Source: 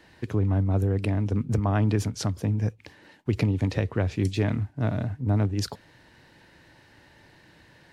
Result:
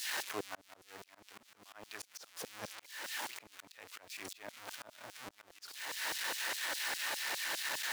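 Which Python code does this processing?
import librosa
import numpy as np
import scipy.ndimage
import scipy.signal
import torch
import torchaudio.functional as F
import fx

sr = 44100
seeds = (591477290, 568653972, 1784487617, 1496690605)

y = x + 0.5 * 10.0 ** (-25.5 / 20.0) * np.sign(x)
y = fx.filter_lfo_highpass(y, sr, shape='saw_down', hz=4.9, low_hz=470.0, high_hz=5300.0, q=0.93)
y = fx.auto_swell(y, sr, attack_ms=481.0)
y = F.gain(torch.from_numpy(y), -4.5).numpy()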